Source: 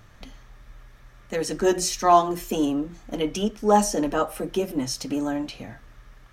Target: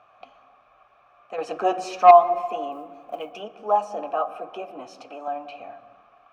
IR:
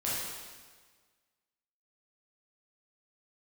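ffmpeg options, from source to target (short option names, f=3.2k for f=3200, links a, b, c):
-filter_complex "[0:a]equalizer=f=1.2k:t=o:w=2.6:g=8,asplit=2[a][b];[b]acompressor=threshold=-27dB:ratio=6,volume=-1dB[c];[a][c]amix=inputs=2:normalize=0,asplit=3[d][e][f];[d]bandpass=f=730:t=q:w=8,volume=0dB[g];[e]bandpass=f=1.09k:t=q:w=8,volume=-6dB[h];[f]bandpass=f=2.44k:t=q:w=8,volume=-9dB[i];[g][h][i]amix=inputs=3:normalize=0,asettb=1/sr,asplit=3[j][k][l];[j]atrim=end=1.384[m];[k]atrim=start=1.38:end=2.11,asetpts=PTS-STARTPTS,afade=t=in:d=0.004:c=qsin,afade=t=out:st=0.726:d=0.004:c=qsin,acontrast=71[n];[l]atrim=start=2.106[o];[m][n]acrossfade=d=0.004:c1=hsin:c2=qsin[p];[p][o]acrossfade=d=0.004:c1=qsin:c2=hsin,asettb=1/sr,asplit=3[q][r][s];[q]atrim=end=2.724[t];[r]atrim=start=2.72:end=3.4,asetpts=PTS-STARTPTS,afade=t=in:d=0.004:c=qsin,afade=t=out:st=0.676:d=0.004:c=qsin,acrusher=bits=9:mode=log:mix=0:aa=0.000001[u];[s]atrim=start=3.396[v];[t][u]acrossfade=d=0.004:c1=hsin:c2=qsin[w];[w][v]acrossfade=d=0.004:c1=qsin:c2=hsin,asettb=1/sr,asplit=3[x][y][z];[x]atrim=end=4.874[aa];[y]atrim=start=4.87:end=5.28,asetpts=PTS-STARTPTS,afade=t=in:d=0.004:c=qsin,afade=t=out:st=0.406:d=0.004:c=qsin,highpass=320[ab];[z]atrim=start=5.276[ac];[aa][ab]acrossfade=d=0.004:c1=hsin:c2=qsin[ad];[ad][ac]acrossfade=d=0.004:c1=qsin:c2=hsin,asplit=2[ae][af];[af]equalizer=f=12k:t=o:w=2.6:g=-14[ag];[1:a]atrim=start_sample=2205,lowshelf=f=240:g=9,adelay=123[ah];[ag][ah]afir=irnorm=-1:irlink=0,volume=-20dB[ai];[ae][ai]amix=inputs=2:normalize=0"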